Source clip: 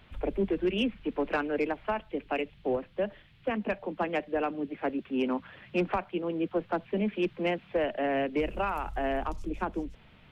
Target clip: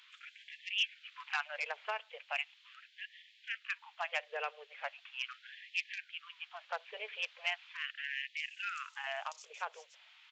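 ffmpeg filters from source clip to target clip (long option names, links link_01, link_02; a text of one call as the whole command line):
ffmpeg -i in.wav -af "aderivative,aresample=16000,aresample=44100,afftfilt=real='re*gte(b*sr/1024,400*pow(1700/400,0.5+0.5*sin(2*PI*0.39*pts/sr)))':imag='im*gte(b*sr/1024,400*pow(1700/400,0.5+0.5*sin(2*PI*0.39*pts/sr)))':win_size=1024:overlap=0.75,volume=10.5dB" out.wav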